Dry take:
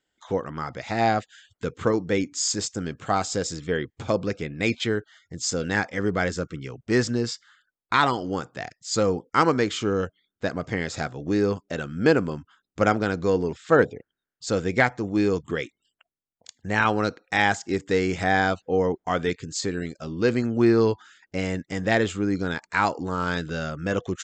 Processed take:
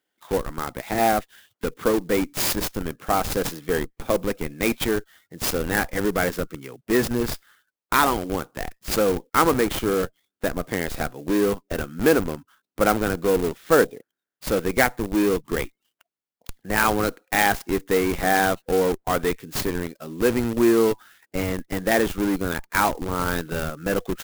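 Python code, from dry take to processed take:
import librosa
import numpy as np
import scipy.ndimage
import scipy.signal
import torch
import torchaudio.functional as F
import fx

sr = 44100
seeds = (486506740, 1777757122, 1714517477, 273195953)

p1 = scipy.signal.sosfilt(scipy.signal.butter(2, 200.0, 'highpass', fs=sr, output='sos'), x)
p2 = fx.schmitt(p1, sr, flips_db=-25.5)
p3 = p1 + (p2 * librosa.db_to_amplitude(-3.0))
y = fx.clock_jitter(p3, sr, seeds[0], jitter_ms=0.039)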